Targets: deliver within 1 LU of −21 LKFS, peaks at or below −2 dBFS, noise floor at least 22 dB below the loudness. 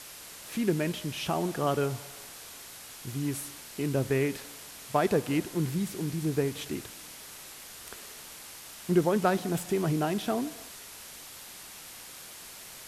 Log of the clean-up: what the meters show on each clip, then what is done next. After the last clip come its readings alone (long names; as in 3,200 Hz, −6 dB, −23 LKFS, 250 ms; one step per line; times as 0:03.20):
background noise floor −46 dBFS; target noise floor −52 dBFS; integrated loudness −30.0 LKFS; sample peak −11.5 dBFS; target loudness −21.0 LKFS
→ noise reduction from a noise print 6 dB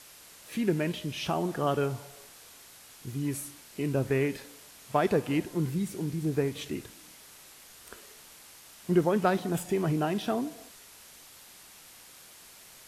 background noise floor −52 dBFS; integrated loudness −30.0 LKFS; sample peak −11.5 dBFS; target loudness −21.0 LKFS
→ level +9 dB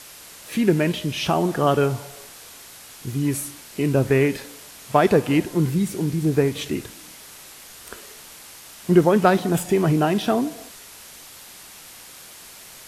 integrated loudness −21.0 LKFS; sample peak −2.5 dBFS; background noise floor −43 dBFS